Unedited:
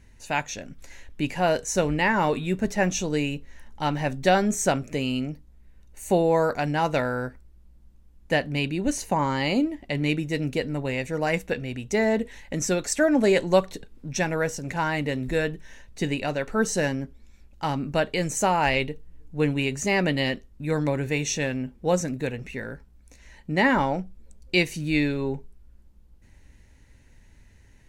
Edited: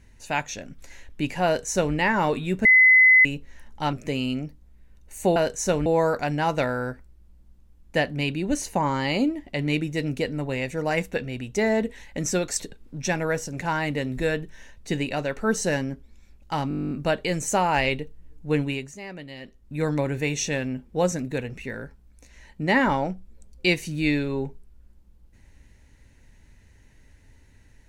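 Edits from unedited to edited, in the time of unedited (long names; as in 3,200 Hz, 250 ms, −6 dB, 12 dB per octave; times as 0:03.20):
0:01.45–0:01.95: duplicate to 0:06.22
0:02.65–0:03.25: beep over 2,030 Hz −11 dBFS
0:03.93–0:04.79: remove
0:12.96–0:13.71: remove
0:17.80: stutter 0.02 s, 12 plays
0:19.49–0:20.64: duck −15.5 dB, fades 0.35 s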